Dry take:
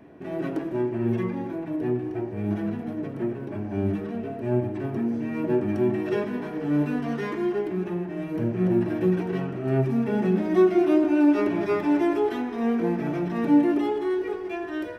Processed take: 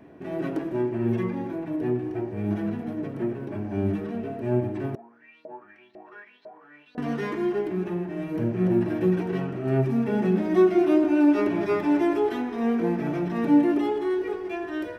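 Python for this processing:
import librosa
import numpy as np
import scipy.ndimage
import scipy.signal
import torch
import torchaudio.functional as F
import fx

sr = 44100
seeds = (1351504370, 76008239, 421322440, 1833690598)

y = fx.filter_lfo_bandpass(x, sr, shape='saw_up', hz=2.0, low_hz=580.0, high_hz=4500.0, q=7.8, at=(4.95, 6.98))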